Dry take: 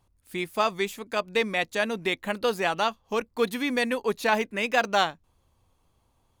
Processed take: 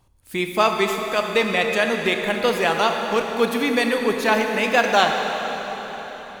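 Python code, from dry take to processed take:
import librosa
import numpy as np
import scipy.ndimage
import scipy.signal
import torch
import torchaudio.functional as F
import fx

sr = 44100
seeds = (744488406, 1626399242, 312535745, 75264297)

p1 = fx.rev_plate(x, sr, seeds[0], rt60_s=4.4, hf_ratio=0.85, predelay_ms=0, drr_db=3.0)
p2 = fx.rider(p1, sr, range_db=4, speed_s=2.0)
p3 = p1 + F.gain(torch.from_numpy(p2), 2.5).numpy()
y = F.gain(torch.from_numpy(p3), -2.5).numpy()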